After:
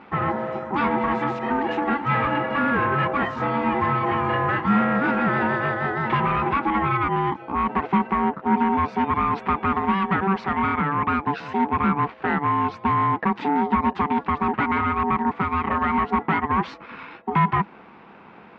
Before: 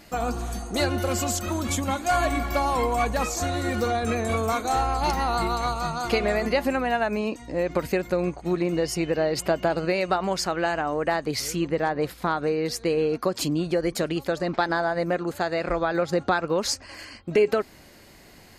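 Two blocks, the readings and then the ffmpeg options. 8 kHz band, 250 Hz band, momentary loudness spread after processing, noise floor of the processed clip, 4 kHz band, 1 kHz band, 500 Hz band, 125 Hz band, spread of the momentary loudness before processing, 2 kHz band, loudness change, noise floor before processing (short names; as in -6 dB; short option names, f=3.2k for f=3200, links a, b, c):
under -30 dB, +4.5 dB, 4 LU, -46 dBFS, -7.5 dB, +6.5 dB, -4.5 dB, +3.0 dB, 4 LU, +4.0 dB, +3.0 dB, -50 dBFS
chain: -af "aeval=exprs='val(0)*sin(2*PI*580*n/s)':c=same,volume=24dB,asoftclip=hard,volume=-24dB,highpass=100,equalizer=f=110:t=q:w=4:g=-6,equalizer=f=200:t=q:w=4:g=8,equalizer=f=590:t=q:w=4:g=-8,equalizer=f=990:t=q:w=4:g=3,lowpass=f=2.4k:w=0.5412,lowpass=f=2.4k:w=1.3066,volume=8dB"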